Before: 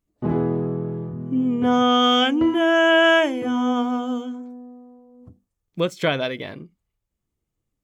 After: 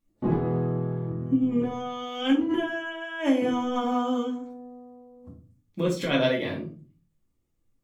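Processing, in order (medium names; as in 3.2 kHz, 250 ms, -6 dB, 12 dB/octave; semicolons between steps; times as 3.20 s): compressor with a negative ratio -22 dBFS, ratio -0.5; simulated room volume 220 m³, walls furnished, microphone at 2.3 m; trim -6.5 dB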